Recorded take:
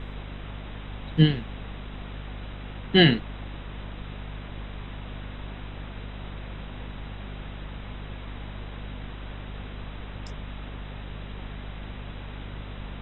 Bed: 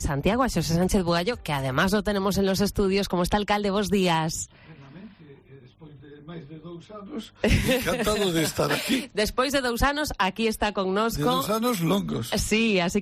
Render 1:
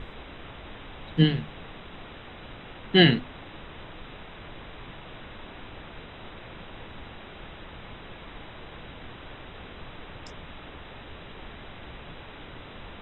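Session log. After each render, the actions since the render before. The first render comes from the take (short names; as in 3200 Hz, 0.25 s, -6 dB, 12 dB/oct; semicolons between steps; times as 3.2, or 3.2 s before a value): notches 50/100/150/200/250 Hz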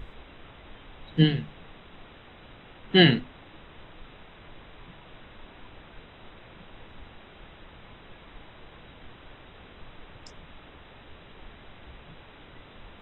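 noise print and reduce 6 dB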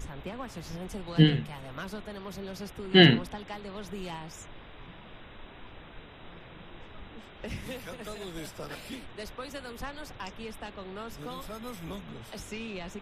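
add bed -17 dB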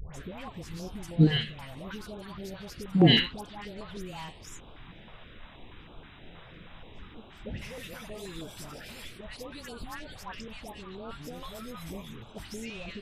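dispersion highs, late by 0.14 s, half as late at 1100 Hz; stepped notch 6.3 Hz 290–1900 Hz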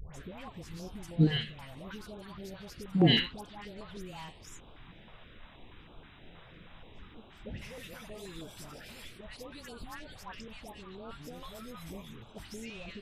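gain -4 dB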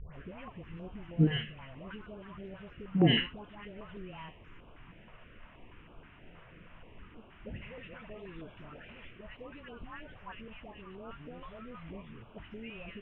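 elliptic low-pass 2900 Hz, stop band 40 dB; notch 810 Hz, Q 12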